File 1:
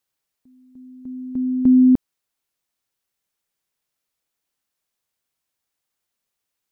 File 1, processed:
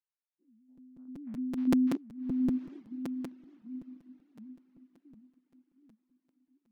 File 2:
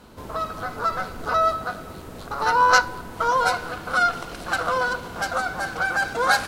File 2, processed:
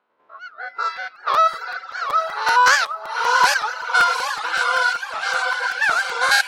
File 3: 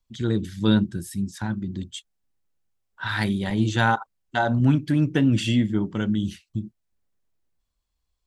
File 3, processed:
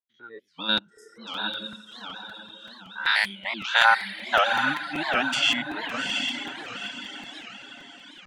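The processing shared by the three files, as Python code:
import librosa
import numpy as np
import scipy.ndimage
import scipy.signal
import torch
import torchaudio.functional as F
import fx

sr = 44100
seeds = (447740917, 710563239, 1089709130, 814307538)

p1 = fx.spec_steps(x, sr, hold_ms=100)
p2 = fx.noise_reduce_blind(p1, sr, reduce_db=19)
p3 = fx.peak_eq(p2, sr, hz=2400.0, db=11.0, octaves=2.3)
p4 = fx.env_lowpass(p3, sr, base_hz=1300.0, full_db=-15.5)
p5 = scipy.signal.sosfilt(scipy.signal.butter(2, 450.0, 'highpass', fs=sr, output='sos'), p4)
p6 = fx.high_shelf(p5, sr, hz=3900.0, db=10.0)
p7 = p6 + fx.echo_diffused(p6, sr, ms=783, feedback_pct=44, wet_db=-3.0, dry=0)
p8 = fx.dereverb_blind(p7, sr, rt60_s=0.87)
p9 = fx.buffer_crackle(p8, sr, first_s=0.77, period_s=0.19, block=256, kind='repeat')
p10 = fx.record_warp(p9, sr, rpm=78.0, depth_cents=250.0)
y = p10 * librosa.db_to_amplitude(-1.5)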